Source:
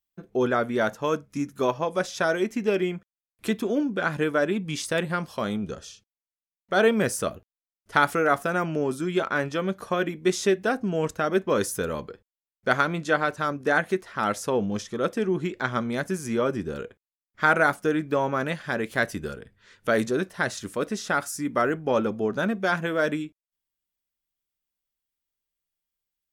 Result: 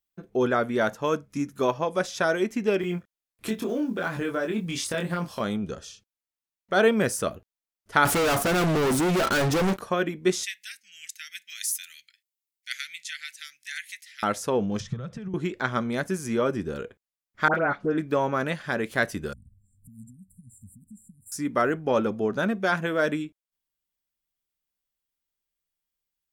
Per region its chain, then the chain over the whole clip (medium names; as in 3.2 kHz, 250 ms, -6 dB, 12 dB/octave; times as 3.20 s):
2.81–5.41 s: block-companded coder 7-bit + compression 4:1, threshold -26 dBFS + doubling 23 ms -3 dB
8.05–9.79 s: peaking EQ 2.6 kHz -6 dB 2.6 oct + waveshaping leveller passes 5 + overload inside the chain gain 21.5 dB
10.43–14.23 s: elliptic high-pass 2 kHz, stop band 50 dB + treble shelf 6.3 kHz +7.5 dB
14.80–15.34 s: low-pass 6 kHz + compression 8:1, threshold -36 dBFS + resonant low shelf 210 Hz +13 dB, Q 3
17.48–17.98 s: upward compressor, threshold -26 dBFS + tape spacing loss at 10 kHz 38 dB + phase dispersion highs, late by 79 ms, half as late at 1.7 kHz
19.33–21.32 s: resonant low shelf 120 Hz +7.5 dB, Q 1.5 + compression 2:1, threshold -50 dBFS + brick-wall FIR band-stop 260–7200 Hz
whole clip: none